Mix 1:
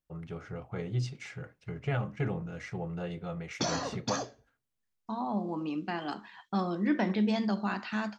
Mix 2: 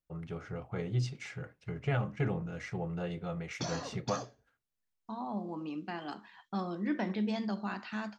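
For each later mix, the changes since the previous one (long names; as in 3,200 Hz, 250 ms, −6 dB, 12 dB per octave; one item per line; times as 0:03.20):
second voice −5.0 dB
background −7.0 dB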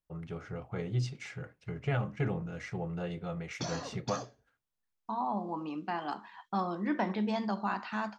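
second voice: add parametric band 950 Hz +9 dB 1.1 octaves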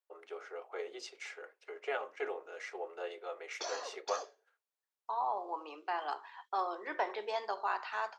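master: add elliptic high-pass filter 400 Hz, stop band 60 dB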